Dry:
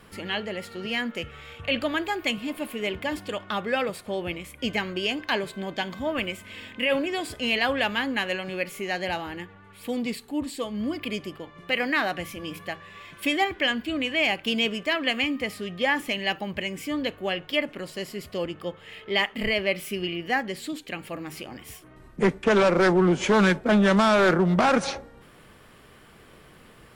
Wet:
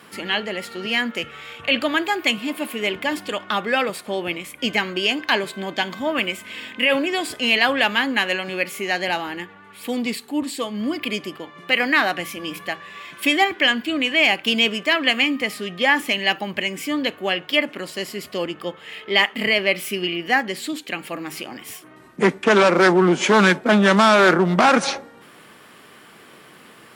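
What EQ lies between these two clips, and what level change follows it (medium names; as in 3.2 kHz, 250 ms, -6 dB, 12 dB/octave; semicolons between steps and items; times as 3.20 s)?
high-pass 230 Hz 12 dB/octave; peaking EQ 510 Hz -4 dB 0.96 oct; +7.5 dB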